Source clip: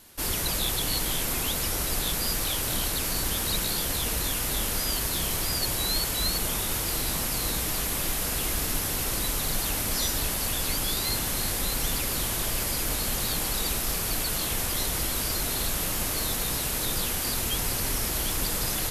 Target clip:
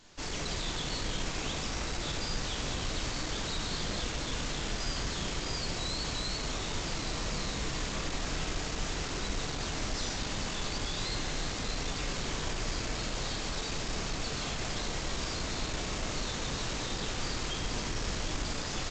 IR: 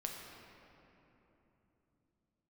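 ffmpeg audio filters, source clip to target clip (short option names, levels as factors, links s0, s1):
-filter_complex "[0:a]aresample=16000,asoftclip=type=hard:threshold=0.0251,aresample=44100[s0];[1:a]atrim=start_sample=2205,asetrate=42336,aresample=44100[s1];[s0][s1]afir=irnorm=-1:irlink=0"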